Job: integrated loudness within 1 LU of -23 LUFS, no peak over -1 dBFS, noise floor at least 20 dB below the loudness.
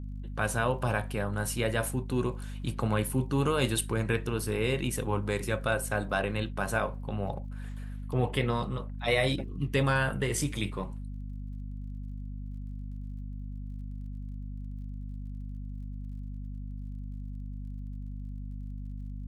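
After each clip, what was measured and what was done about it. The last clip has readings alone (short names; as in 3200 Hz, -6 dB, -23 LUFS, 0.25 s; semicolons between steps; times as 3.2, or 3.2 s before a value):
ticks 28/s; hum 50 Hz; harmonics up to 250 Hz; hum level -36 dBFS; loudness -32.5 LUFS; peak -12.5 dBFS; loudness target -23.0 LUFS
-> de-click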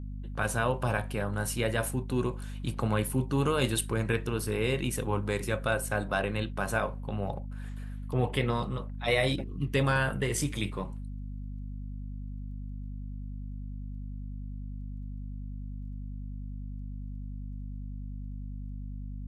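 ticks 0/s; hum 50 Hz; harmonics up to 250 Hz; hum level -36 dBFS
-> de-hum 50 Hz, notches 5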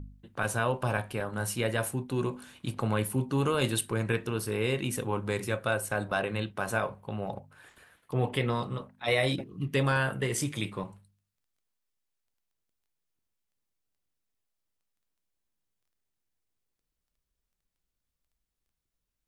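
hum none; loudness -31.0 LUFS; peak -12.5 dBFS; loudness target -23.0 LUFS
-> gain +8 dB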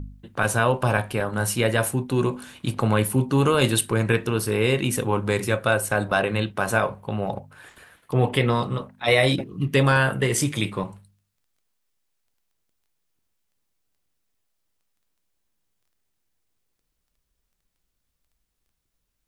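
loudness -23.0 LUFS; peak -4.5 dBFS; noise floor -77 dBFS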